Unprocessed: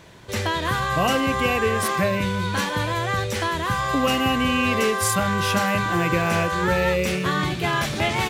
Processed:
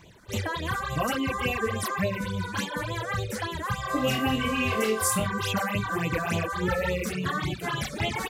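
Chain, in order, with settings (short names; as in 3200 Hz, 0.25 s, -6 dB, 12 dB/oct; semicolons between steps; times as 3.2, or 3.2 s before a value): reverb removal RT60 0.55 s; phaser stages 8, 3.5 Hz, lowest notch 100–1700 Hz; 3.87–5.27 flutter echo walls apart 3.9 m, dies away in 0.28 s; gain -2.5 dB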